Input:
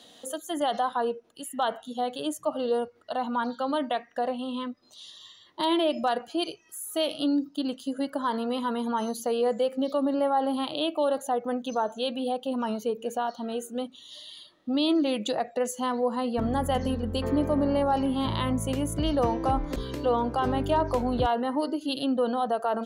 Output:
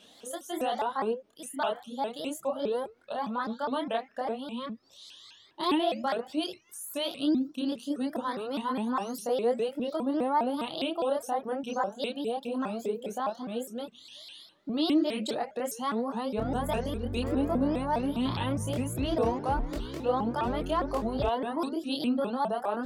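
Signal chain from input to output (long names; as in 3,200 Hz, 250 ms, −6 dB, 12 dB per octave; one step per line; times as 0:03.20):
multi-voice chorus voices 2, 0.32 Hz, delay 27 ms, depth 3 ms
pitch modulation by a square or saw wave saw up 4.9 Hz, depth 250 cents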